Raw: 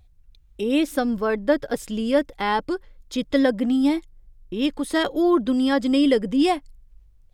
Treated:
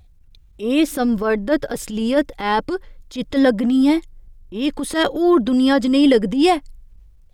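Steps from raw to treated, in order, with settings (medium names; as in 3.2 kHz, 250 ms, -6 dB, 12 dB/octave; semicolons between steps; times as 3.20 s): transient shaper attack -11 dB, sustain +1 dB; trim +6 dB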